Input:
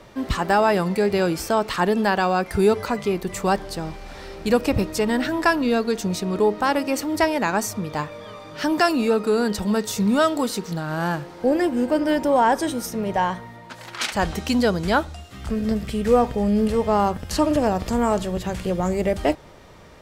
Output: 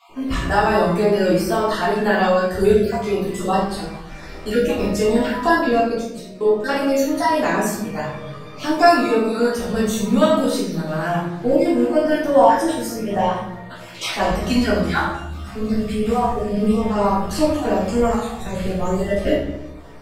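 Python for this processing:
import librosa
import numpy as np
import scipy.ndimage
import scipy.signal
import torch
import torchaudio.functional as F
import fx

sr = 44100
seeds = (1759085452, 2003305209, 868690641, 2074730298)

y = fx.spec_dropout(x, sr, seeds[0], share_pct=29)
y = fx.level_steps(y, sr, step_db=20, at=(5.69, 6.64))
y = fx.comb_fb(y, sr, f0_hz=69.0, decay_s=0.16, harmonics='all', damping=0.0, mix_pct=80)
y = fx.room_shoebox(y, sr, seeds[1], volume_m3=210.0, walls='mixed', distance_m=3.3)
y = y * librosa.db_to_amplitude(-2.5)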